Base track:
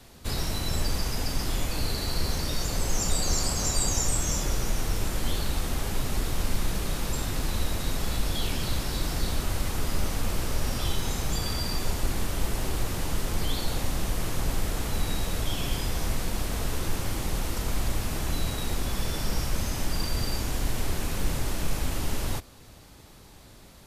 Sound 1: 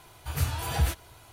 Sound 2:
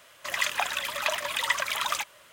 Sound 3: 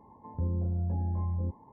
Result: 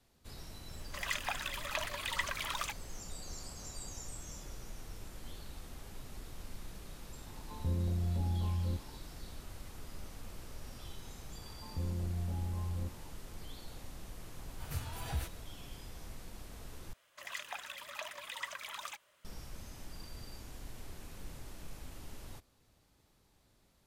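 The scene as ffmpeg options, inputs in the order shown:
ffmpeg -i bed.wav -i cue0.wav -i cue1.wav -i cue2.wav -filter_complex "[2:a]asplit=2[link_01][link_02];[3:a]asplit=2[link_03][link_04];[0:a]volume=-19.5dB,asplit=2[link_05][link_06];[link_05]atrim=end=16.934[link_07];[link_02]atrim=end=2.32,asetpts=PTS-STARTPTS,volume=-15.5dB[link_08];[link_06]atrim=start=19.246[link_09];[link_01]atrim=end=2.32,asetpts=PTS-STARTPTS,volume=-9.5dB,afade=type=in:duration=0.004:curve=hsin,afade=type=out:start_time=2.316:duration=0.004:curve=hsin,adelay=690[link_10];[link_03]atrim=end=1.72,asetpts=PTS-STARTPTS,volume=-3dB,afade=type=in:duration=0.004:curve=hsin,afade=type=out:start_time=1.716:duration=0.004:curve=hsin,adelay=7260[link_11];[link_04]atrim=end=1.72,asetpts=PTS-STARTPTS,volume=-6.5dB,afade=type=in:duration=0.004:curve=hsin,afade=type=out:start_time=1.716:duration=0.004:curve=hsin,adelay=501858S[link_12];[1:a]atrim=end=1.32,asetpts=PTS-STARTPTS,volume=-12dB,afade=type=in:duration=0.004:curve=hsin,afade=type=out:start_time=1.316:duration=0.004:curve=hsin,adelay=14340[link_13];[link_07][link_08]acrossfade=duration=0.004:curve1=hsin:curve2=hsin[link_14];[link_14][link_09]acrossfade=duration=0.004:curve1=hsin:curve2=hsin[link_15];[link_15][link_10][link_11][link_12][link_13]amix=inputs=5:normalize=0" out.wav

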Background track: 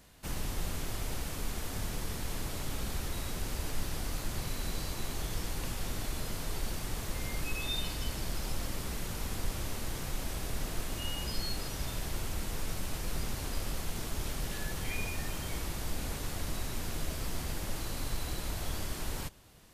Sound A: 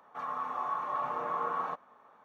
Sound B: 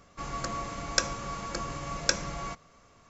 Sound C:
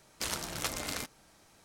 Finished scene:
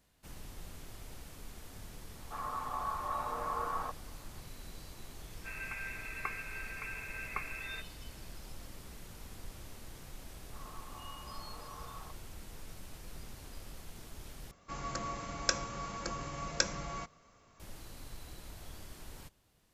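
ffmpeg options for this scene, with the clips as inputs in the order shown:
ffmpeg -i bed.wav -i cue0.wav -i cue1.wav -filter_complex "[1:a]asplit=2[link_01][link_02];[2:a]asplit=2[link_03][link_04];[0:a]volume=-12.5dB[link_05];[link_03]lowpass=frequency=2300:width_type=q:width=0.5098,lowpass=frequency=2300:width_type=q:width=0.6013,lowpass=frequency=2300:width_type=q:width=0.9,lowpass=frequency=2300:width_type=q:width=2.563,afreqshift=-2700[link_06];[link_05]asplit=2[link_07][link_08];[link_07]atrim=end=14.514[link_09];[link_04]atrim=end=3.09,asetpts=PTS-STARTPTS,volume=-4.5dB[link_10];[link_08]atrim=start=17.596[link_11];[link_01]atrim=end=2.24,asetpts=PTS-STARTPTS,volume=-3.5dB,afade=type=in:duration=0.004:curve=hsin,afade=type=out:start_time=2.236:duration=0.004:curve=hsin,adelay=2160[link_12];[link_06]atrim=end=3.09,asetpts=PTS-STARTPTS,volume=-8dB,afade=type=in:duration=0.004:curve=hsin,afade=type=out:start_time=3.086:duration=0.004:curve=hsin,adelay=5270[link_13];[link_02]atrim=end=2.24,asetpts=PTS-STARTPTS,volume=-17dB,afade=type=in:duration=0.004:curve=hsin,afade=type=out:start_time=2.236:duration=0.004:curve=hsin,adelay=10370[link_14];[link_09][link_10]acrossfade=duration=0.004:curve1=hsin:curve2=hsin[link_15];[link_15][link_11]acrossfade=duration=0.004:curve1=hsin:curve2=hsin[link_16];[link_16][link_12][link_13][link_14]amix=inputs=4:normalize=0" out.wav

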